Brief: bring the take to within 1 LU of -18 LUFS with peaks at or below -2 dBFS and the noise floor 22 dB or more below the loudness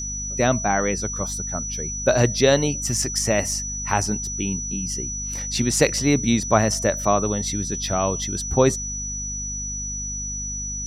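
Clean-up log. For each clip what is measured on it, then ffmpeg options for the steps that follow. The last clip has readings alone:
hum 50 Hz; harmonics up to 250 Hz; hum level -31 dBFS; steady tone 5900 Hz; tone level -28 dBFS; loudness -22.5 LUFS; peak -2.5 dBFS; loudness target -18.0 LUFS
-> -af "bandreject=f=50:t=h:w=4,bandreject=f=100:t=h:w=4,bandreject=f=150:t=h:w=4,bandreject=f=200:t=h:w=4,bandreject=f=250:t=h:w=4"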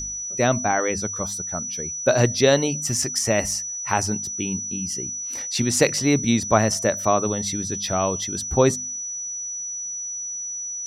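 hum none; steady tone 5900 Hz; tone level -28 dBFS
-> -af "bandreject=f=5.9k:w=30"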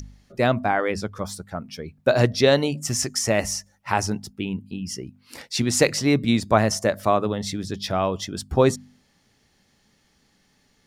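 steady tone none; loudness -23.0 LUFS; peak -2.5 dBFS; loudness target -18.0 LUFS
-> -af "volume=5dB,alimiter=limit=-2dB:level=0:latency=1"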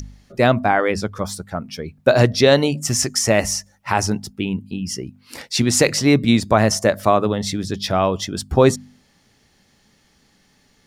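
loudness -18.5 LUFS; peak -2.0 dBFS; noise floor -59 dBFS

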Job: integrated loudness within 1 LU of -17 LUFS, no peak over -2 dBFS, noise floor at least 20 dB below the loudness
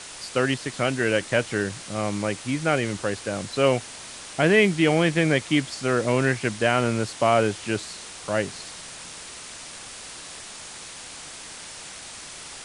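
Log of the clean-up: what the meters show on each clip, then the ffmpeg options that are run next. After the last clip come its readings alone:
noise floor -40 dBFS; noise floor target -44 dBFS; loudness -23.5 LUFS; peak -6.0 dBFS; loudness target -17.0 LUFS
-> -af "afftdn=nr=6:nf=-40"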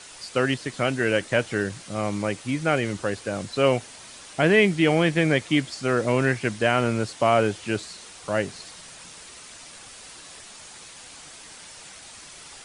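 noise floor -45 dBFS; loudness -23.5 LUFS; peak -6.0 dBFS; loudness target -17.0 LUFS
-> -af "volume=6.5dB,alimiter=limit=-2dB:level=0:latency=1"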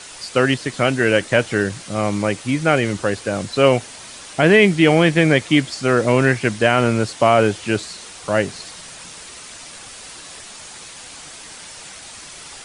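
loudness -17.5 LUFS; peak -2.0 dBFS; noise floor -38 dBFS

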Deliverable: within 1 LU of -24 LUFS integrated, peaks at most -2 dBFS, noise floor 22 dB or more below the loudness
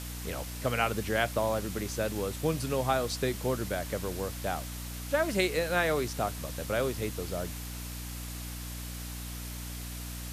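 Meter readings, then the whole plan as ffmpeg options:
hum 60 Hz; harmonics up to 300 Hz; hum level -38 dBFS; noise floor -39 dBFS; noise floor target -55 dBFS; loudness -32.5 LUFS; peak -12.5 dBFS; loudness target -24.0 LUFS
-> -af "bandreject=f=60:t=h:w=6,bandreject=f=120:t=h:w=6,bandreject=f=180:t=h:w=6,bandreject=f=240:t=h:w=6,bandreject=f=300:t=h:w=6"
-af "afftdn=nr=16:nf=-39"
-af "volume=8.5dB"

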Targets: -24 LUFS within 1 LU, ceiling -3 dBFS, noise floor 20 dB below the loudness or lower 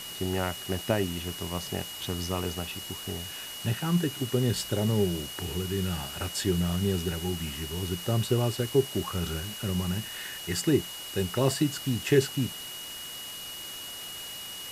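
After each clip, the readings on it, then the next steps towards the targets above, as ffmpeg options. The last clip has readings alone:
steady tone 2900 Hz; tone level -40 dBFS; noise floor -40 dBFS; noise floor target -50 dBFS; loudness -30.0 LUFS; peak -10.0 dBFS; loudness target -24.0 LUFS
-> -af "bandreject=f=2.9k:w=30"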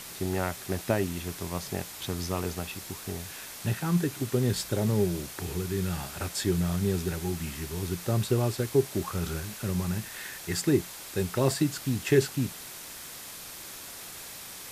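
steady tone none; noise floor -43 dBFS; noise floor target -51 dBFS
-> -af "afftdn=nr=8:nf=-43"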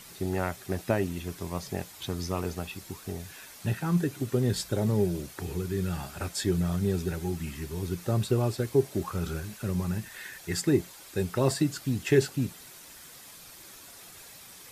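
noise floor -49 dBFS; noise floor target -51 dBFS
-> -af "afftdn=nr=6:nf=-49"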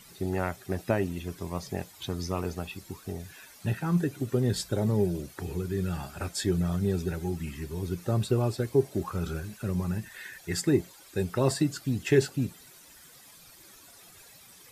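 noise floor -53 dBFS; loudness -30.5 LUFS; peak -10.0 dBFS; loudness target -24.0 LUFS
-> -af "volume=6.5dB"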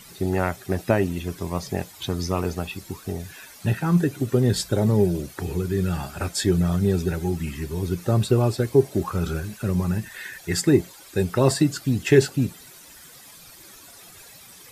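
loudness -24.0 LUFS; peak -3.5 dBFS; noise floor -47 dBFS

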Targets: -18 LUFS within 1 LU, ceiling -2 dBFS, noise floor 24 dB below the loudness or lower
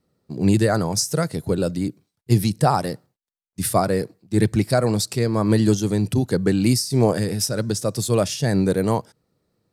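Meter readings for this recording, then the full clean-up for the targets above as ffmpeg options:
loudness -21.0 LUFS; peak -4.0 dBFS; loudness target -18.0 LUFS
-> -af "volume=3dB,alimiter=limit=-2dB:level=0:latency=1"

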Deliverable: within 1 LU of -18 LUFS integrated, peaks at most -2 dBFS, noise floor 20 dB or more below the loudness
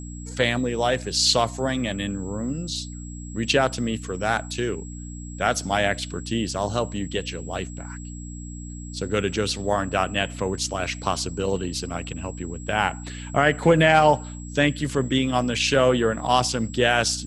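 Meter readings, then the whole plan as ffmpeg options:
hum 60 Hz; harmonics up to 300 Hz; hum level -34 dBFS; steady tone 7700 Hz; tone level -43 dBFS; loudness -23.5 LUFS; peak -4.0 dBFS; loudness target -18.0 LUFS
-> -af "bandreject=f=60:t=h:w=4,bandreject=f=120:t=h:w=4,bandreject=f=180:t=h:w=4,bandreject=f=240:t=h:w=4,bandreject=f=300:t=h:w=4"
-af "bandreject=f=7.7k:w=30"
-af "volume=5.5dB,alimiter=limit=-2dB:level=0:latency=1"

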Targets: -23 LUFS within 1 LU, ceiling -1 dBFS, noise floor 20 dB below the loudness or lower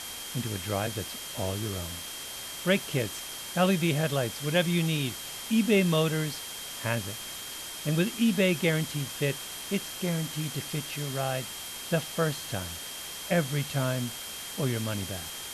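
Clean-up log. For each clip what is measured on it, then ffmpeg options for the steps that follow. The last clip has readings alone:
steady tone 3200 Hz; tone level -43 dBFS; noise floor -40 dBFS; noise floor target -50 dBFS; loudness -29.5 LUFS; peak -12.5 dBFS; loudness target -23.0 LUFS
-> -af "bandreject=f=3.2k:w=30"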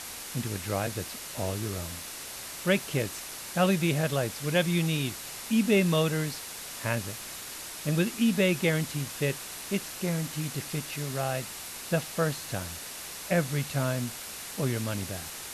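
steady tone none; noise floor -41 dBFS; noise floor target -50 dBFS
-> -af "afftdn=nr=9:nf=-41"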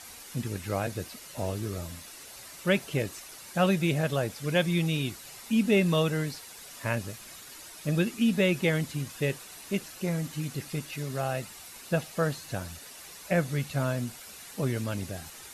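noise floor -47 dBFS; noise floor target -50 dBFS
-> -af "afftdn=nr=6:nf=-47"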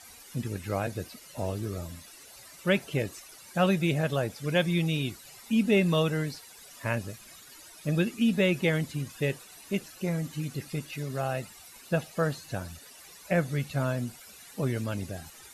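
noise floor -51 dBFS; loudness -30.0 LUFS; peak -12.5 dBFS; loudness target -23.0 LUFS
-> -af "volume=7dB"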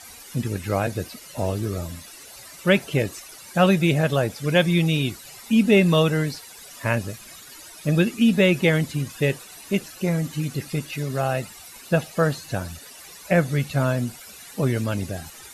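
loudness -23.0 LUFS; peak -5.5 dBFS; noise floor -44 dBFS

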